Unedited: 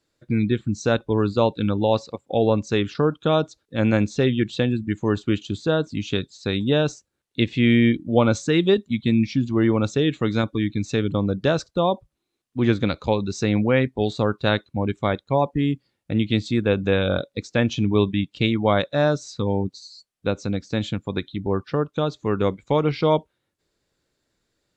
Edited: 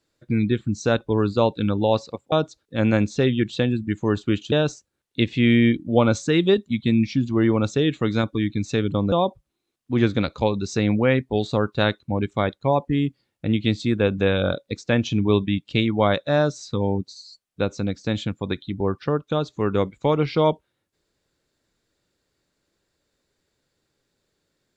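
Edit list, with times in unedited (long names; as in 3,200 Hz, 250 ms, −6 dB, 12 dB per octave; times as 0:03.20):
0:02.32–0:03.32: remove
0:05.52–0:06.72: remove
0:11.32–0:11.78: remove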